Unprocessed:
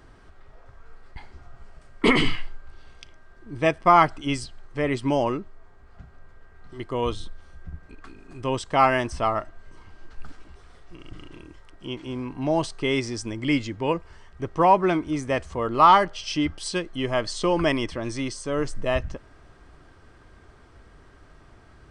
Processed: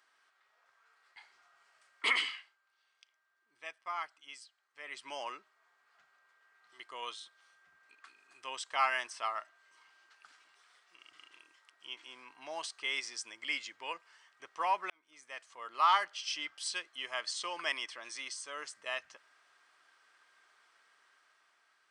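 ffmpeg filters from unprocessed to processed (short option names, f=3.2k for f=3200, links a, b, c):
-filter_complex "[0:a]asplit=4[a][b][c][d];[a]atrim=end=2.57,asetpts=PTS-STARTPTS,afade=t=out:st=2.1:d=0.47:silence=0.266073[e];[b]atrim=start=2.57:end=4.74,asetpts=PTS-STARTPTS,volume=-11.5dB[f];[c]atrim=start=4.74:end=14.9,asetpts=PTS-STARTPTS,afade=t=in:d=0.47:silence=0.266073,afade=t=out:st=10.156:d=0.004:c=hsin[g];[d]atrim=start=14.9,asetpts=PTS-STARTPTS,afade=t=in:d=1.09[h];[e][f][g][h]concat=n=4:v=0:a=1,highpass=1.4k,dynaudnorm=f=200:g=9:m=4dB,volume=-9dB"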